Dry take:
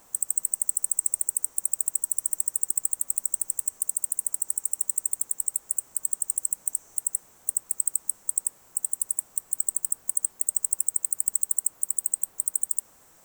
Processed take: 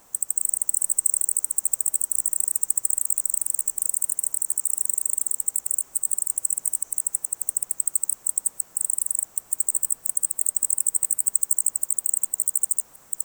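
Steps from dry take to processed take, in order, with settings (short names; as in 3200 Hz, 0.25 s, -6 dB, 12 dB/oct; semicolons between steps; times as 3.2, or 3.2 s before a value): reverse delay 0.36 s, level -2 dB; gain +1.5 dB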